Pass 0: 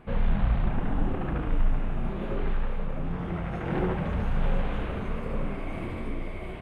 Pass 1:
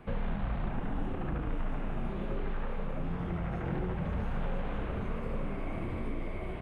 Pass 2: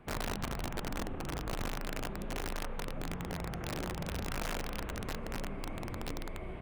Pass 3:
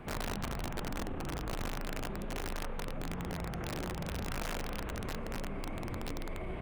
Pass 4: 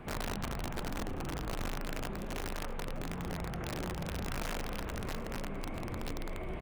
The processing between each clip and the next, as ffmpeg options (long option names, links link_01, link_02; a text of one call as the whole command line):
ffmpeg -i in.wav -filter_complex "[0:a]acrossover=split=160|2000[link_01][link_02][link_03];[link_01]acompressor=threshold=-32dB:ratio=4[link_04];[link_02]acompressor=threshold=-37dB:ratio=4[link_05];[link_03]acompressor=threshold=-57dB:ratio=4[link_06];[link_04][link_05][link_06]amix=inputs=3:normalize=0" out.wav
ffmpeg -i in.wav -af "aeval=exprs='(mod(20*val(0)+1,2)-1)/20':channel_layout=same,volume=-4.5dB" out.wav
ffmpeg -i in.wav -af "alimiter=level_in=16dB:limit=-24dB:level=0:latency=1:release=52,volume=-16dB,volume=8.5dB" out.wav
ffmpeg -i in.wav -af "aecho=1:1:655:0.178" out.wav